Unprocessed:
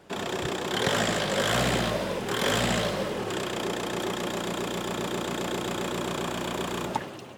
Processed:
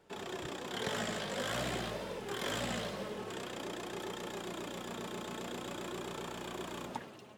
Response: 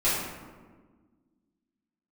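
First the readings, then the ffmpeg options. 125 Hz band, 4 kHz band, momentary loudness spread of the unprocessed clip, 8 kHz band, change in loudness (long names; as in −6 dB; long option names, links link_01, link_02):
−12.5 dB, −11.5 dB, 6 LU, −11.5 dB, −11.5 dB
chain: -af "flanger=delay=2.2:depth=2.5:regen=67:speed=0.48:shape=sinusoidal,volume=-7dB"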